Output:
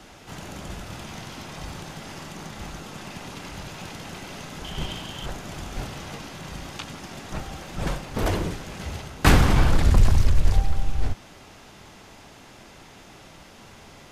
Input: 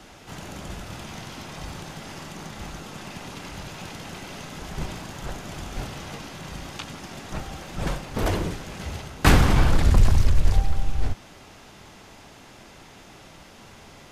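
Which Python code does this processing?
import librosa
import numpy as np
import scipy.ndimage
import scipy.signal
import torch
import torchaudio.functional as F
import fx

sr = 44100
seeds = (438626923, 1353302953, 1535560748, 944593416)

y = fx.peak_eq(x, sr, hz=3100.0, db=14.5, octaves=0.24, at=(4.64, 5.26))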